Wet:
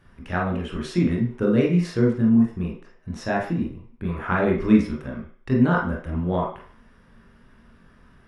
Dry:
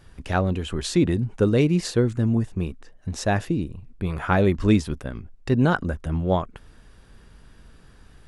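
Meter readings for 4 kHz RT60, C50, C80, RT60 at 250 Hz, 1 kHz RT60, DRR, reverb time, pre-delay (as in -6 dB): 0.60 s, 3.5 dB, 9.5 dB, 0.40 s, 0.55 s, -2.5 dB, 0.50 s, 21 ms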